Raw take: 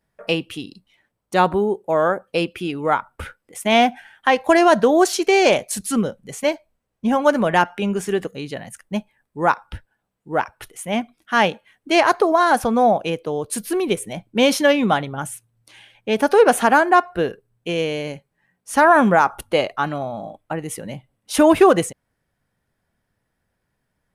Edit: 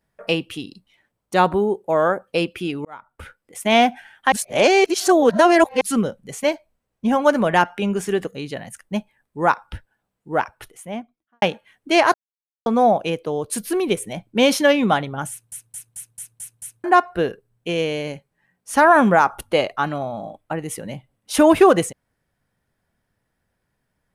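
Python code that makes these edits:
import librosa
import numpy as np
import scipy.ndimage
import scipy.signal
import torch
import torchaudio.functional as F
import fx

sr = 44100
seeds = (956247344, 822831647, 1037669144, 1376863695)

y = fx.studio_fade_out(x, sr, start_s=10.41, length_s=1.01)
y = fx.edit(y, sr, fx.fade_in_span(start_s=2.85, length_s=0.8),
    fx.reverse_span(start_s=4.32, length_s=1.49),
    fx.silence(start_s=12.14, length_s=0.52),
    fx.stutter_over(start_s=15.3, slice_s=0.22, count=7), tone=tone)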